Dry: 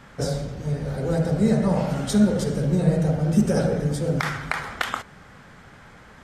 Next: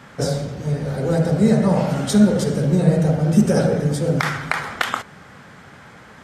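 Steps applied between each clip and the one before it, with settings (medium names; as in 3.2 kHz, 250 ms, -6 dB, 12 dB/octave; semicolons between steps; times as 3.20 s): high-pass 91 Hz 12 dB/octave; trim +4.5 dB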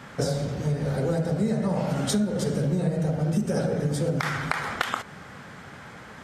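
compression 6:1, threshold -22 dBFS, peak gain reduction 13.5 dB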